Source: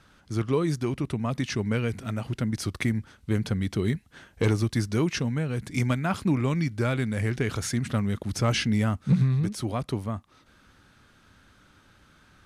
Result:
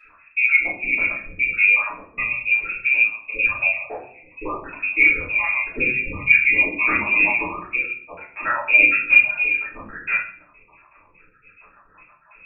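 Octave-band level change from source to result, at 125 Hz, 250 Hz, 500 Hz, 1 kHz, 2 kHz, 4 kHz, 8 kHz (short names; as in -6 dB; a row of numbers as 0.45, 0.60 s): -19.0 dB, -10.0 dB, -4.5 dB, +6.0 dB, +21.0 dB, n/a, under -40 dB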